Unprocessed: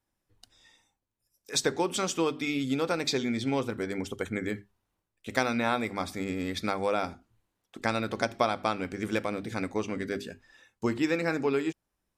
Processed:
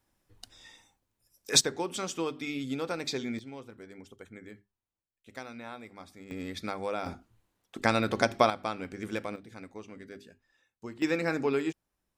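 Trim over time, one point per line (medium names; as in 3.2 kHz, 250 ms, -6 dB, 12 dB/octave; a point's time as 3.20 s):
+6.5 dB
from 1.61 s -5 dB
from 3.39 s -15.5 dB
from 6.31 s -5.5 dB
from 7.06 s +3 dB
from 8.50 s -5 dB
from 9.36 s -13.5 dB
from 11.02 s -1 dB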